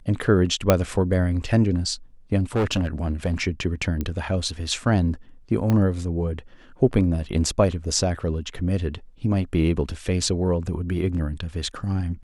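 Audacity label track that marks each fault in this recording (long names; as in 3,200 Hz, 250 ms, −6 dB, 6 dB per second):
0.700000	0.700000	click −2 dBFS
2.560000	3.340000	clipping −17.5 dBFS
4.010000	4.010000	click −14 dBFS
5.700000	5.700000	click −11 dBFS
8.540000	8.550000	drop-out 5.1 ms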